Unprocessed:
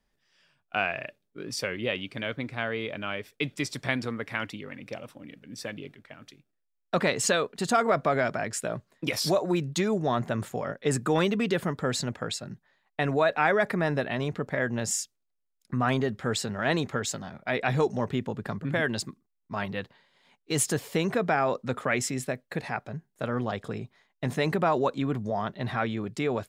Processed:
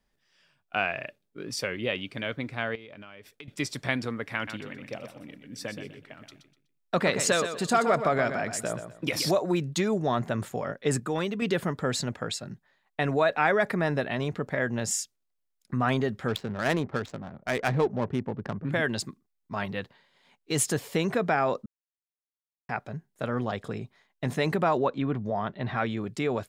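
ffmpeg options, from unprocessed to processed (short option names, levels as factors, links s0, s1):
-filter_complex "[0:a]asettb=1/sr,asplit=3[s0][s1][s2];[s0]atrim=end=2.754[s3];[s1]atrim=start=2.75:end=3.48,asetpts=PTS-STARTPTS,afade=t=in:d=0.004:c=qsin,afade=t=out:st=0.726:d=0.004:c=qsin,acompressor=threshold=0.00891:ratio=16:attack=3.2:release=140:knee=1:detection=peak[s4];[s2]atrim=start=3.476[s5];[s3][s4]acrossfade=d=0.004:c1=hsin:c2=qsin[s6];[s6][s5]acrossfade=d=0.004:c1=qsin:c2=hsin,asettb=1/sr,asplit=3[s7][s8][s9];[s7]atrim=end=4.354[s10];[s8]atrim=start=4.35:end=9.31,asetpts=PTS-STARTPTS,afade=t=in:d=0.004:c=qsin,afade=t=out:st=4.956:d=0.004:c=qsin,aecho=1:1:124|248|372:0.355|0.0958|0.0259,atrim=end_sample=218736[s11];[s9]atrim=start=9.306[s12];[s10][s11]acrossfade=d=0.004:c1=hsin:c2=qsin[s13];[s13][s12]acrossfade=d=0.004:c1=qsin:c2=hsin,asettb=1/sr,asplit=3[s14][s15][s16];[s14]atrim=end=16.284[s17];[s15]atrim=start=16.28:end=18.69,asetpts=PTS-STARTPTS,afade=t=in:d=0.004:c=qsin,afade=t=out:st=2.406:d=0.004:c=qsin,adynamicsmooth=sensitivity=3.5:basefreq=710[s18];[s16]atrim=start=18.686[s19];[s17][s18]acrossfade=d=0.004:c1=hsin:c2=qsin[s20];[s20][s19]acrossfade=d=0.004:c1=qsin:c2=hsin,asettb=1/sr,asplit=3[s21][s22][s23];[s21]atrim=end=24.774[s24];[s22]atrim=start=24.77:end=25.76,asetpts=PTS-STARTPTS,afade=t=in:d=0.004:c=qsin,afade=t=out:st=0.986:d=0.004:c=qsin,lowpass=3500[s25];[s23]atrim=start=25.756[s26];[s24][s25]acrossfade=d=0.004:c1=hsin:c2=qsin[s27];[s27][s26]acrossfade=d=0.004:c1=qsin:c2=hsin,asplit=5[s28][s29][s30][s31][s32];[s28]atrim=end=11.002[s33];[s29]atrim=start=10.998:end=11.422,asetpts=PTS-STARTPTS,volume=0.562[s34];[s30]atrim=start=11.418:end=21.66,asetpts=PTS-STARTPTS,afade=t=out:st=10.238:d=0.004:c=hsin[s35];[s31]atrim=start=21.66:end=22.69,asetpts=PTS-STARTPTS,volume=0[s36];[s32]atrim=start=22.69,asetpts=PTS-STARTPTS,afade=t=in:d=0.004:c=hsin[s37];[s33][s34]acrossfade=d=0.004:c1=hsin:c2=hsin[s38];[s35][s36][s37]concat=n=3:v=0:a=1[s39];[s38][s39]acrossfade=d=0.004:c1=hsin:c2=hsin"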